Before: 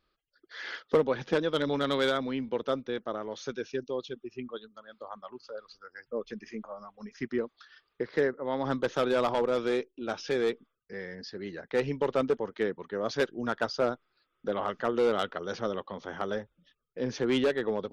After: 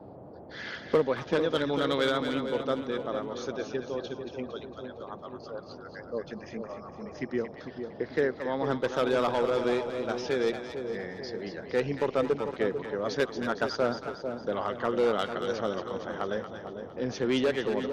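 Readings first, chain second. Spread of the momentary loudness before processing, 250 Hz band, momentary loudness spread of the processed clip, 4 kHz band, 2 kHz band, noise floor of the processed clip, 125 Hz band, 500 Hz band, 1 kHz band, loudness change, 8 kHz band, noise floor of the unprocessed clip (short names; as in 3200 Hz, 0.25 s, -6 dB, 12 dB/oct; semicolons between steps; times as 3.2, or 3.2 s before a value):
17 LU, +1.0 dB, 14 LU, +1.0 dB, +1.0 dB, -46 dBFS, +1.5 dB, +1.0 dB, +1.0 dB, +0.5 dB, n/a, -79 dBFS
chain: split-band echo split 910 Hz, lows 0.445 s, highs 0.229 s, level -7.5 dB; band noise 73–700 Hz -47 dBFS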